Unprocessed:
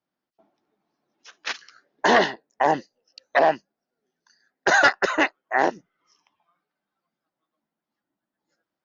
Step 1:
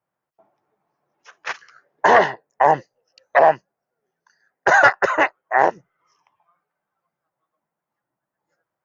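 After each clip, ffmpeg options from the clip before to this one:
-af "equalizer=f=125:t=o:w=1:g=10,equalizer=f=250:t=o:w=1:g=-9,equalizer=f=500:t=o:w=1:g=5,equalizer=f=1000:t=o:w=1:g=6,equalizer=f=2000:t=o:w=1:g=3,equalizer=f=4000:t=o:w=1:g=-9"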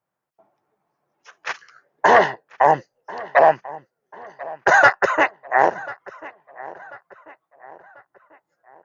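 -filter_complex "[0:a]asplit=2[s0][s1];[s1]adelay=1041,lowpass=f=2900:p=1,volume=0.112,asplit=2[s2][s3];[s3]adelay=1041,lowpass=f=2900:p=1,volume=0.45,asplit=2[s4][s5];[s5]adelay=1041,lowpass=f=2900:p=1,volume=0.45,asplit=2[s6][s7];[s7]adelay=1041,lowpass=f=2900:p=1,volume=0.45[s8];[s0][s2][s4][s6][s8]amix=inputs=5:normalize=0"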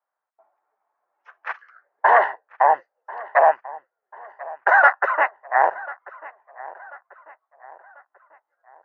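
-af "asuperpass=centerf=1100:order=4:qfactor=0.87"

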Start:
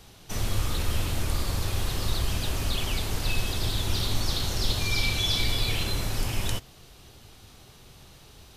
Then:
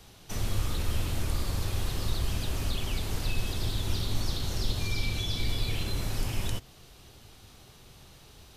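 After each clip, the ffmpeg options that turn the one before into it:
-filter_complex "[0:a]acrossover=split=440[s0][s1];[s1]acompressor=threshold=0.0141:ratio=2[s2];[s0][s2]amix=inputs=2:normalize=0,volume=0.794"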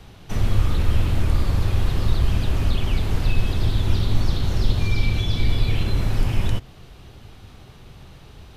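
-af "bass=f=250:g=4,treble=f=4000:g=-11,volume=2.24"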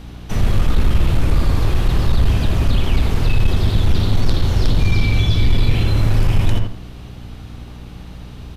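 -filter_complex "[0:a]asplit=2[s0][s1];[s1]adelay=83,lowpass=f=2200:p=1,volume=0.668,asplit=2[s2][s3];[s3]adelay=83,lowpass=f=2200:p=1,volume=0.3,asplit=2[s4][s5];[s5]adelay=83,lowpass=f=2200:p=1,volume=0.3,asplit=2[s6][s7];[s7]adelay=83,lowpass=f=2200:p=1,volume=0.3[s8];[s0][s2][s4][s6][s8]amix=inputs=5:normalize=0,aeval=exprs='val(0)+0.0112*(sin(2*PI*60*n/s)+sin(2*PI*2*60*n/s)/2+sin(2*PI*3*60*n/s)/3+sin(2*PI*4*60*n/s)/4+sin(2*PI*5*60*n/s)/5)':c=same,aeval=exprs='0.668*(cos(1*acos(clip(val(0)/0.668,-1,1)))-cos(1*PI/2))+0.188*(cos(5*acos(clip(val(0)/0.668,-1,1)))-cos(5*PI/2))+0.0668*(cos(7*acos(clip(val(0)/0.668,-1,1)))-cos(7*PI/2))':c=same"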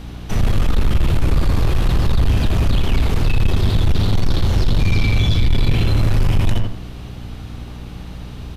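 -af "asoftclip=type=tanh:threshold=0.282,volume=1.33"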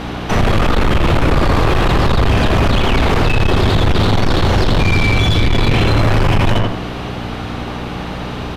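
-filter_complex "[0:a]asplit=2[s0][s1];[s1]highpass=f=720:p=1,volume=12.6,asoftclip=type=tanh:threshold=0.376[s2];[s0][s2]amix=inputs=2:normalize=0,lowpass=f=1300:p=1,volume=0.501,volume=1.78"

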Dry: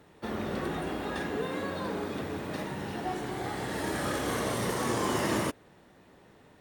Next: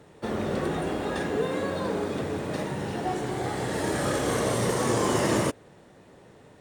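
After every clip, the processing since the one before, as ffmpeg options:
-af "equalizer=f=125:t=o:w=1:g=5,equalizer=f=500:t=o:w=1:g=5,equalizer=f=8000:t=o:w=1:g=7,equalizer=f=16000:t=o:w=1:g=-6,volume=1.26"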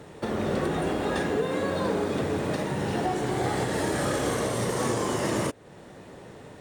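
-filter_complex "[0:a]asplit=2[s0][s1];[s1]acompressor=threshold=0.0178:ratio=6,volume=1.26[s2];[s0][s2]amix=inputs=2:normalize=0,alimiter=limit=0.15:level=0:latency=1:release=441"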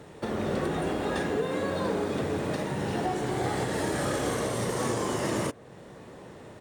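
-filter_complex "[0:a]asplit=2[s0][s1];[s1]adelay=1166,volume=0.0794,highshelf=f=4000:g=-26.2[s2];[s0][s2]amix=inputs=2:normalize=0,volume=0.794"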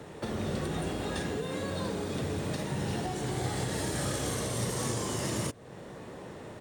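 -filter_complex "[0:a]acrossover=split=170|3000[s0][s1][s2];[s1]acompressor=threshold=0.01:ratio=2.5[s3];[s0][s3][s2]amix=inputs=3:normalize=0,volume=1.26"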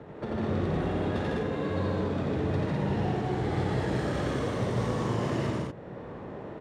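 -af "adynamicsmooth=sensitivity=2.5:basefreq=2000,aecho=1:1:87.46|151.6|204.1:0.794|0.794|0.794"

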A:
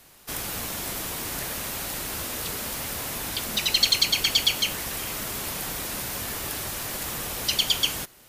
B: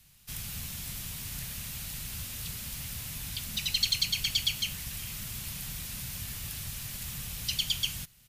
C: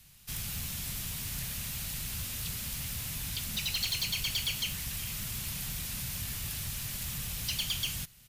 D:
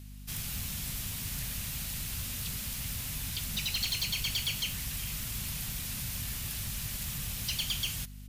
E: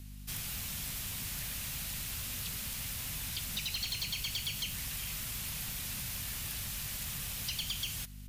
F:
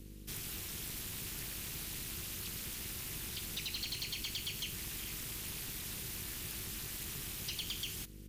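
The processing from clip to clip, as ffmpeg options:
-af "firequalizer=gain_entry='entry(140,0);entry(330,-22);entry(2600,-7)':delay=0.05:min_phase=1"
-af "asoftclip=type=tanh:threshold=0.0335,volume=1.33"
-af "aeval=exprs='val(0)+0.00562*(sin(2*PI*50*n/s)+sin(2*PI*2*50*n/s)/2+sin(2*PI*3*50*n/s)/3+sin(2*PI*4*50*n/s)/4+sin(2*PI*5*50*n/s)/5)':c=same"
-filter_complex "[0:a]acrossover=split=370|3300[s0][s1][s2];[s0]acompressor=threshold=0.00708:ratio=4[s3];[s1]acompressor=threshold=0.00891:ratio=4[s4];[s2]acompressor=threshold=0.0141:ratio=4[s5];[s3][s4][s5]amix=inputs=3:normalize=0"
-af "tremolo=f=270:d=0.824"

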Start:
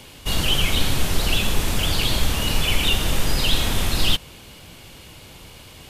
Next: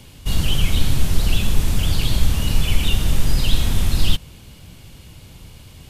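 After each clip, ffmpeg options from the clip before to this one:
-af "bass=f=250:g=11,treble=f=4000:g=3,volume=0.531"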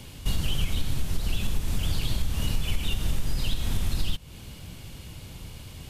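-af "acompressor=threshold=0.0794:ratio=4"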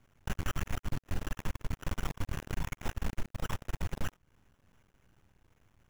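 -af "acrusher=samples=10:mix=1:aa=0.000001,aeval=exprs='0.211*(cos(1*acos(clip(val(0)/0.211,-1,1)))-cos(1*PI/2))+0.0596*(cos(4*acos(clip(val(0)/0.211,-1,1)))-cos(4*PI/2))+0.0237*(cos(5*acos(clip(val(0)/0.211,-1,1)))-cos(5*PI/2))+0.0299*(cos(6*acos(clip(val(0)/0.211,-1,1)))-cos(6*PI/2))+0.0531*(cos(7*acos(clip(val(0)/0.211,-1,1)))-cos(7*PI/2))':c=same,aeval=exprs='max(val(0),0)':c=same,volume=0.531"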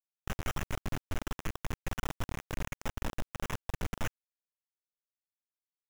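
-af "acrusher=bits=4:mix=0:aa=0.000001,volume=0.631"

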